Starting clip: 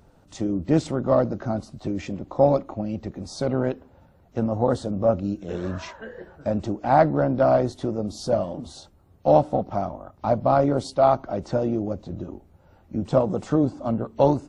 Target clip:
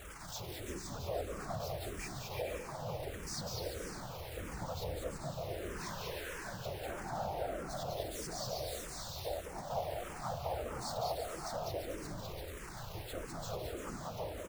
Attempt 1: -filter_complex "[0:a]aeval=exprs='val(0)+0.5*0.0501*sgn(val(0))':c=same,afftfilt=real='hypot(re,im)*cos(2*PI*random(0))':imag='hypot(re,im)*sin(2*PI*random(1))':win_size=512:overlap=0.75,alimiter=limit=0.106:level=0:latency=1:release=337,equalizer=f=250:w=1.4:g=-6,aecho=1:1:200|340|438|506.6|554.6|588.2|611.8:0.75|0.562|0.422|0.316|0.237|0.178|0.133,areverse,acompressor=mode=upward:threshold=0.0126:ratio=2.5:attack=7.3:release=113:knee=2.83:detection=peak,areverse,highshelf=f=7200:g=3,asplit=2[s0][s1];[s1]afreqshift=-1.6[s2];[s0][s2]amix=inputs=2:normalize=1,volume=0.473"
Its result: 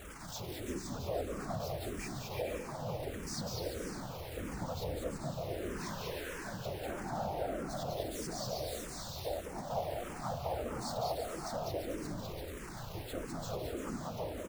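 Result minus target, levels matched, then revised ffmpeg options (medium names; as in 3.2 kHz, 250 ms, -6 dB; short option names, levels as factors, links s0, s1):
250 Hz band +4.0 dB
-filter_complex "[0:a]aeval=exprs='val(0)+0.5*0.0501*sgn(val(0))':c=same,afftfilt=real='hypot(re,im)*cos(2*PI*random(0))':imag='hypot(re,im)*sin(2*PI*random(1))':win_size=512:overlap=0.75,alimiter=limit=0.106:level=0:latency=1:release=337,equalizer=f=250:w=1.4:g=-14,aecho=1:1:200|340|438|506.6|554.6|588.2|611.8:0.75|0.562|0.422|0.316|0.237|0.178|0.133,areverse,acompressor=mode=upward:threshold=0.0126:ratio=2.5:attack=7.3:release=113:knee=2.83:detection=peak,areverse,highshelf=f=7200:g=3,asplit=2[s0][s1];[s1]afreqshift=-1.6[s2];[s0][s2]amix=inputs=2:normalize=1,volume=0.473"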